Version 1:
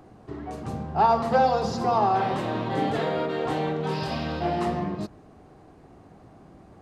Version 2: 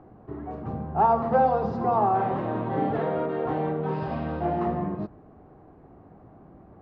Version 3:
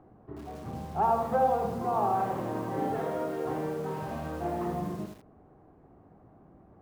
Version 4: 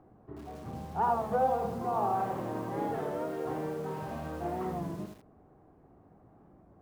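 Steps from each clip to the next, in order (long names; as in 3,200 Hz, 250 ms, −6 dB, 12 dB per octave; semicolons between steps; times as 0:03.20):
low-pass filter 1,400 Hz 12 dB per octave
feedback echo at a low word length 80 ms, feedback 35%, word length 7 bits, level −6 dB; level −6 dB
wow of a warped record 33 1/3 rpm, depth 100 cents; level −2.5 dB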